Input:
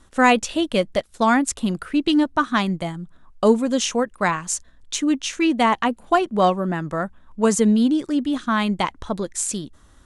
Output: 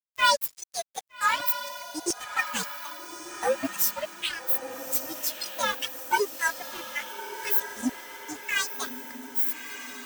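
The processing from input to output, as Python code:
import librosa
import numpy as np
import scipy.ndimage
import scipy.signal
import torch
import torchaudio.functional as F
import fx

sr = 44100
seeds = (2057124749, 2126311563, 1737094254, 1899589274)

p1 = fx.partial_stretch(x, sr, pct=127)
p2 = librosa.effects.preemphasis(p1, coef=0.8, zi=[0.0])
p3 = fx.rider(p2, sr, range_db=10, speed_s=2.0)
p4 = p2 + (p3 * 10.0 ** (-0.5 / 20.0))
p5 = fx.dereverb_blind(p4, sr, rt60_s=1.6)
p6 = fx.filter_lfo_highpass(p5, sr, shape='saw_down', hz=1.9, low_hz=260.0, high_hz=3500.0, q=2.4)
p7 = np.sign(p6) * np.maximum(np.abs(p6) - 10.0 ** (-35.0 / 20.0), 0.0)
y = p7 + fx.echo_diffused(p7, sr, ms=1240, feedback_pct=53, wet_db=-9.5, dry=0)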